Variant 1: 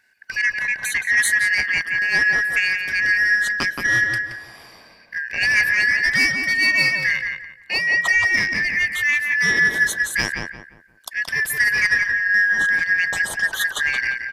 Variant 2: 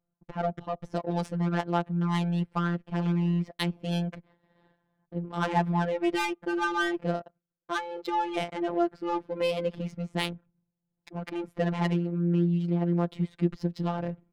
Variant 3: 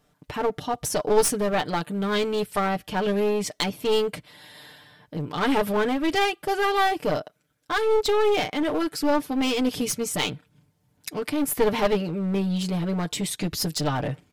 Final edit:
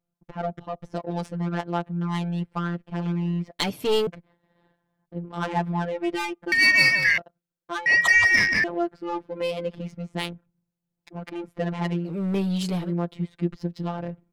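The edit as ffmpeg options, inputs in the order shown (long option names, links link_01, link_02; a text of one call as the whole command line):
ffmpeg -i take0.wav -i take1.wav -i take2.wav -filter_complex "[2:a]asplit=2[link_01][link_02];[0:a]asplit=2[link_03][link_04];[1:a]asplit=5[link_05][link_06][link_07][link_08][link_09];[link_05]atrim=end=3.602[link_10];[link_01]atrim=start=3.598:end=4.072[link_11];[link_06]atrim=start=4.068:end=6.522[link_12];[link_03]atrim=start=6.518:end=7.182[link_13];[link_07]atrim=start=7.178:end=7.862[link_14];[link_04]atrim=start=7.858:end=8.642[link_15];[link_08]atrim=start=8.638:end=12.19[link_16];[link_02]atrim=start=12.03:end=12.93[link_17];[link_09]atrim=start=12.77[link_18];[link_10][link_11]acrossfade=duration=0.004:curve1=hsin:curve2=hsin[link_19];[link_19][link_12]acrossfade=duration=0.004:curve1=hsin:curve2=hsin[link_20];[link_20][link_13]acrossfade=duration=0.004:curve1=hsin:curve2=hsin[link_21];[link_21][link_14]acrossfade=duration=0.004:curve1=hsin:curve2=hsin[link_22];[link_22][link_15]acrossfade=duration=0.004:curve1=hsin:curve2=hsin[link_23];[link_23][link_16]acrossfade=duration=0.004:curve1=hsin:curve2=hsin[link_24];[link_24][link_17]acrossfade=duration=0.16:curve1=tri:curve2=tri[link_25];[link_25][link_18]acrossfade=duration=0.16:curve1=tri:curve2=tri" out.wav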